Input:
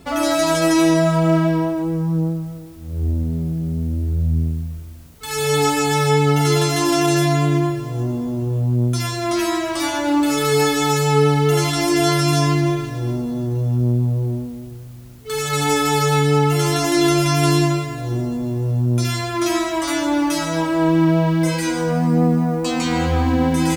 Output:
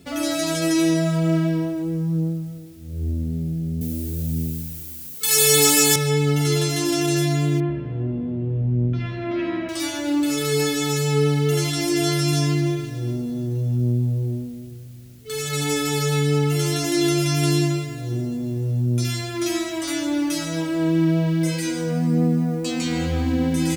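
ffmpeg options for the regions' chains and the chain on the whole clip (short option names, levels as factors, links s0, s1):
-filter_complex "[0:a]asettb=1/sr,asplit=3[s0][s1][s2];[s0]atrim=end=3.814[s3];[s1]atrim=start=3.81:end=5.96,asetpts=PTS-STARTPTS,afade=t=in:d=0.004:c=qsin,afade=t=out:st=2.146:d=0.004:c=qsin,highpass=f=260:p=1,aemphasis=mode=production:type=50kf,acontrast=53[s4];[s2]atrim=start=5.956[s5];[s3][s4]acrossfade=d=0.004:c1=hsin:c2=qsin[s6];[s6][s5]acrossfade=d=0.004:c1=qsin:c2=hsin,asettb=1/sr,asplit=3[s7][s8][s9];[s7]atrim=end=7.604[s10];[s8]atrim=start=7.6:end=9.69,asetpts=PTS-STARTPTS,afade=t=in:d=0.004:c=qsin,afade=t=out:st=2.086:d=0.004:c=qsin,lowpass=f=2700:w=0.5412,lowpass=f=2700:w=1.3066,asplit=8[s11][s12][s13][s14][s15][s16][s17][s18];[s12]adelay=81,afreqshift=-76,volume=0.178[s19];[s13]adelay=162,afreqshift=-152,volume=0.116[s20];[s14]adelay=243,afreqshift=-228,volume=0.075[s21];[s15]adelay=324,afreqshift=-304,volume=0.049[s22];[s16]adelay=405,afreqshift=-380,volume=0.0316[s23];[s17]adelay=486,afreqshift=-456,volume=0.0207[s24];[s18]adelay=567,afreqshift=-532,volume=0.0133[s25];[s11][s19][s20][s21][s22][s23][s24][s25]amix=inputs=8:normalize=0,atrim=end_sample=92169[s26];[s9]atrim=start=9.686[s27];[s10][s26]acrossfade=d=0.004:c1=hsin:c2=qsin[s28];[s28][s27]acrossfade=d=0.004:c1=qsin:c2=hsin,highpass=77,equalizer=f=970:w=1.1:g=-12,volume=0.794"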